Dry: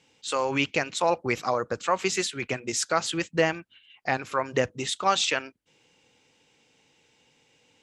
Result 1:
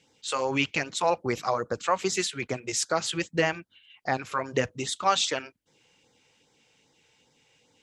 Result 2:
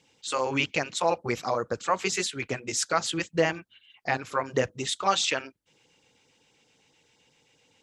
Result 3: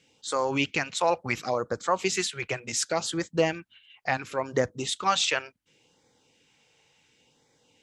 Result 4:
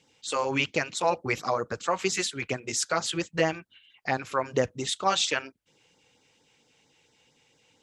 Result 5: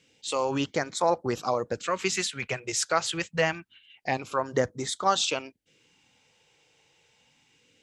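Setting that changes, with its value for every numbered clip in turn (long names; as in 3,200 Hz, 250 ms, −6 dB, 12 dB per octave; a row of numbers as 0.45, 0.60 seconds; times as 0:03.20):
auto-filter notch, speed: 2.5, 7.7, 0.7, 4.4, 0.26 Hertz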